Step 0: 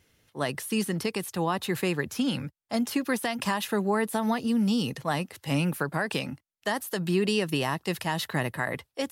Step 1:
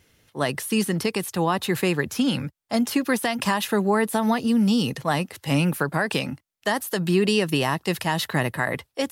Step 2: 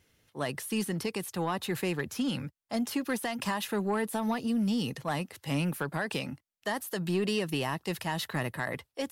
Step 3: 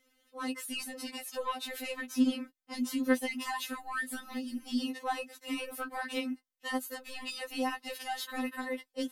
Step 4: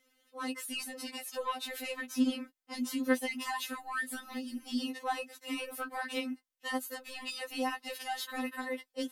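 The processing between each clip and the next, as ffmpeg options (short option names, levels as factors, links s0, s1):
-af "acontrast=26"
-af "asoftclip=type=tanh:threshold=0.224,volume=0.422"
-af "afftfilt=real='re*3.46*eq(mod(b,12),0)':imag='im*3.46*eq(mod(b,12),0)':win_size=2048:overlap=0.75"
-af "lowshelf=f=160:g=-7"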